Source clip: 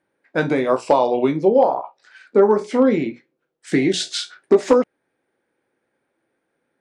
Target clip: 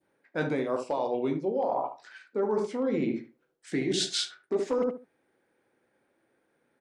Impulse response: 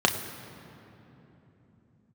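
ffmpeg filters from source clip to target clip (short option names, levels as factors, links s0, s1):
-filter_complex "[0:a]asplit=2[s0][s1];[s1]adelay=74,lowpass=f=1100:p=1,volume=0.447,asplit=2[s2][s3];[s3]adelay=74,lowpass=f=1100:p=1,volume=0.2,asplit=2[s4][s5];[s5]adelay=74,lowpass=f=1100:p=1,volume=0.2[s6];[s0][s2][s4][s6]amix=inputs=4:normalize=0,areverse,acompressor=threshold=0.0562:ratio=10,areverse,adynamicequalizer=threshold=0.00891:dfrequency=1600:dqfactor=0.77:tfrequency=1600:tqfactor=0.77:attack=5:release=100:ratio=0.375:range=2:mode=cutabove:tftype=bell"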